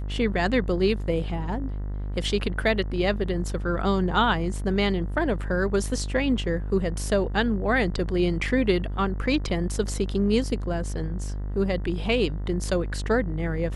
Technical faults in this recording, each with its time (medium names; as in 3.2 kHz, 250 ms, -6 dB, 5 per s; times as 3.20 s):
buzz 50 Hz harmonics 40 -30 dBFS